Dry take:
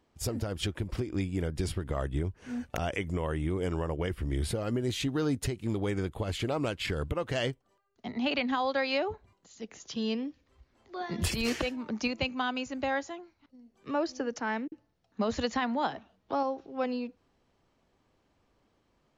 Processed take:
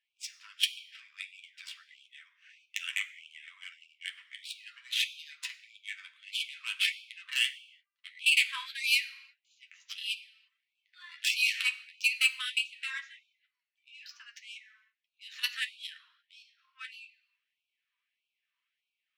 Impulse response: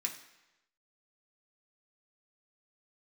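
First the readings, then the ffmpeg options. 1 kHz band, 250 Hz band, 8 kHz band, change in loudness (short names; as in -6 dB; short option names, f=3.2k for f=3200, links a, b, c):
-19.0 dB, under -40 dB, +2.0 dB, +2.0 dB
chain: -filter_complex "[0:a]highshelf=f=1.8k:t=q:w=1.5:g=13.5,adynamicsmooth=sensitivity=1:basefreq=1.6k,flanger=delay=8.8:depth=4.7:regen=-26:speed=1.4:shape=triangular,asplit=2[a][b];[1:a]atrim=start_sample=2205,afade=t=out:st=0.4:d=0.01,atrim=end_sample=18081[c];[b][c]afir=irnorm=-1:irlink=0,volume=-2dB[d];[a][d]amix=inputs=2:normalize=0,afftfilt=real='re*gte(b*sr/1024,930*pow(2300/930,0.5+0.5*sin(2*PI*1.6*pts/sr)))':imag='im*gte(b*sr/1024,930*pow(2300/930,0.5+0.5*sin(2*PI*1.6*pts/sr)))':win_size=1024:overlap=0.75,volume=-6.5dB"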